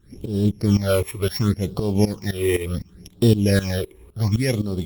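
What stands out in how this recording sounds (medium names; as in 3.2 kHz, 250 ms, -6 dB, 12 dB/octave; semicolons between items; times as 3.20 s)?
a buzz of ramps at a fixed pitch in blocks of 8 samples; phasing stages 8, 0.69 Hz, lowest notch 190–2000 Hz; tremolo saw up 3.9 Hz, depth 85%; Opus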